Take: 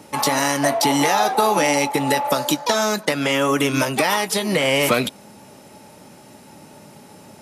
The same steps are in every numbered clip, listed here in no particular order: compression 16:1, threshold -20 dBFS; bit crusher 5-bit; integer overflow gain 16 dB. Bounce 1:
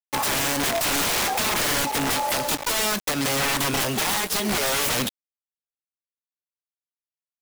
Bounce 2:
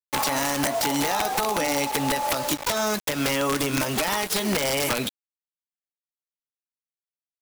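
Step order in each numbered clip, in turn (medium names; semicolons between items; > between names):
bit crusher > integer overflow > compression; bit crusher > compression > integer overflow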